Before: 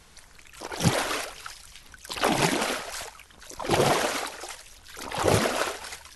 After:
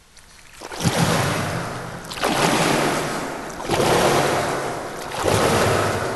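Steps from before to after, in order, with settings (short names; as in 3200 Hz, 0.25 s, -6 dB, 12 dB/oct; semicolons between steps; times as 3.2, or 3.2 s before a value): plate-style reverb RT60 3.2 s, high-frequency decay 0.4×, pre-delay 0.105 s, DRR -3 dB; gain +2.5 dB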